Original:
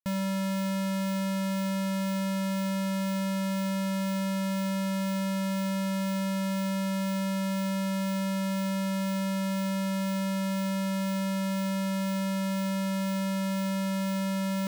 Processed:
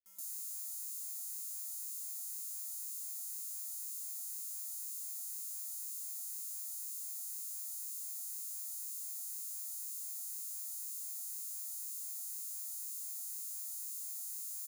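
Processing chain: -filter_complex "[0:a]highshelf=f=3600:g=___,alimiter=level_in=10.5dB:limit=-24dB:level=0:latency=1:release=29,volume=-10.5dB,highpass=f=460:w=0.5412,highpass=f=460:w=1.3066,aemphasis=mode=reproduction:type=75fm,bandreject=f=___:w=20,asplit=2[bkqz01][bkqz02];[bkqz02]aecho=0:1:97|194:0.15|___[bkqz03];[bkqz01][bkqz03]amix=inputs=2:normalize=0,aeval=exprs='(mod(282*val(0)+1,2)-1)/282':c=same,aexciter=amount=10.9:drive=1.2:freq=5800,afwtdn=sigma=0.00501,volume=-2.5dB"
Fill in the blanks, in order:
3, 1700, 0.0284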